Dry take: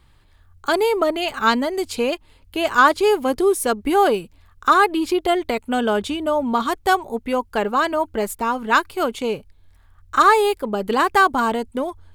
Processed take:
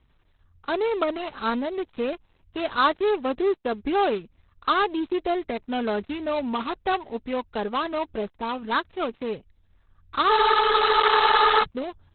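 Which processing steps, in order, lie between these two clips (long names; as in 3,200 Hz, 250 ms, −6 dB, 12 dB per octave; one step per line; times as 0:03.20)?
gap after every zero crossing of 0.15 ms
frozen spectrum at 0:10.30, 1.33 s
level −5.5 dB
Opus 8 kbit/s 48,000 Hz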